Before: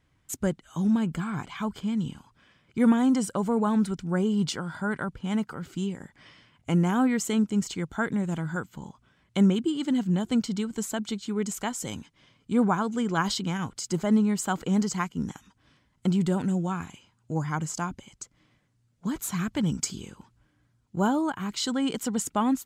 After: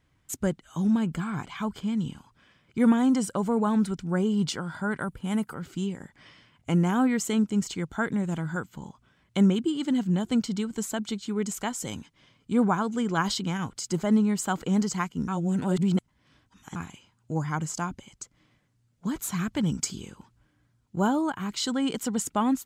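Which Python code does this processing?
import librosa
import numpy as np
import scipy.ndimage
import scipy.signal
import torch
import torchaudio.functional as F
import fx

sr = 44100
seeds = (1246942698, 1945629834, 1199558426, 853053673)

y = fx.high_shelf_res(x, sr, hz=7800.0, db=9.5, q=1.5, at=(5.0, 5.54))
y = fx.edit(y, sr, fx.reverse_span(start_s=15.28, length_s=1.48), tone=tone)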